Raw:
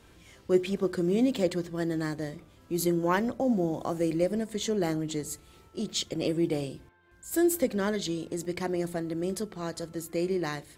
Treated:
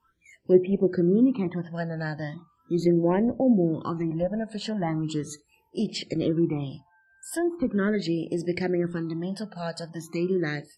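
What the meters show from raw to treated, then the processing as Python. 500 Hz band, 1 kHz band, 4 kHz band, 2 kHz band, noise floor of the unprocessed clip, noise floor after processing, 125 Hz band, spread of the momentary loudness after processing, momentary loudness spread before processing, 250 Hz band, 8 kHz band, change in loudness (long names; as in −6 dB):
+2.5 dB, −0.5 dB, −2.0 dB, +2.0 dB, −57 dBFS, −66 dBFS, +5.5 dB, 13 LU, 11 LU, +4.0 dB, −6.5 dB, +3.5 dB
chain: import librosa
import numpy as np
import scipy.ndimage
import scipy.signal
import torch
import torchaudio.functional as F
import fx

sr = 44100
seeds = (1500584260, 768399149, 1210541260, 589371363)

y = fx.env_lowpass_down(x, sr, base_hz=1300.0, full_db=-22.5)
y = fx.phaser_stages(y, sr, stages=12, low_hz=350.0, high_hz=1300.0, hz=0.39, feedback_pct=5)
y = fx.noise_reduce_blind(y, sr, reduce_db=26)
y = y * librosa.db_to_amplitude(6.5)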